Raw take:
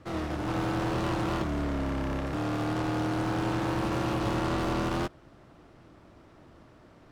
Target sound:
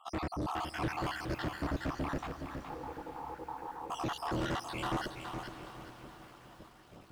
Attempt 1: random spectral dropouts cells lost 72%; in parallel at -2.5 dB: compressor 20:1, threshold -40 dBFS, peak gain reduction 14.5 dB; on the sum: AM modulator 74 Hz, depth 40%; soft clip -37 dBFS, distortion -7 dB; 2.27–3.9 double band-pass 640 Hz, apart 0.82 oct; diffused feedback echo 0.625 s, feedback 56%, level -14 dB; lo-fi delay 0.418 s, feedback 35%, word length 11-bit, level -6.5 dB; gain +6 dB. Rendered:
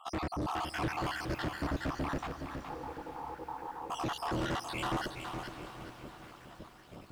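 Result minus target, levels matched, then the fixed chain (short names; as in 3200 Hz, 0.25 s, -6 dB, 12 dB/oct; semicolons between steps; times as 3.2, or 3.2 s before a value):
compressor: peak gain reduction +14.5 dB
random spectral dropouts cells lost 72%; AM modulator 74 Hz, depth 40%; soft clip -37 dBFS, distortion -8 dB; 2.27–3.9 double band-pass 640 Hz, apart 0.82 oct; diffused feedback echo 0.625 s, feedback 56%, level -14 dB; lo-fi delay 0.418 s, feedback 35%, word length 11-bit, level -6.5 dB; gain +6 dB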